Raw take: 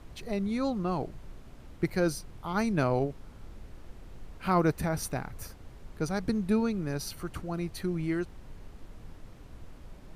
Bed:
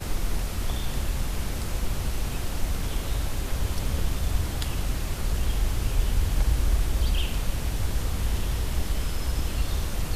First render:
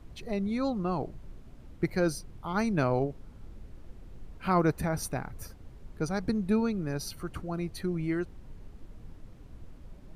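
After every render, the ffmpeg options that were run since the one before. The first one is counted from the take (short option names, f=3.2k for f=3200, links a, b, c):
-af "afftdn=nr=6:nf=-50"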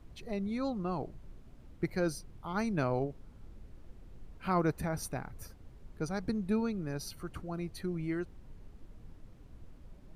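-af "volume=-4.5dB"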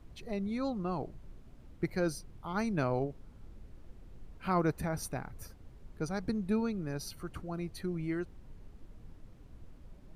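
-af anull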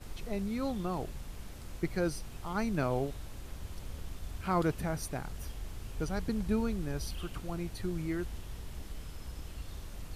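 -filter_complex "[1:a]volume=-16.5dB[a];[0:a][a]amix=inputs=2:normalize=0"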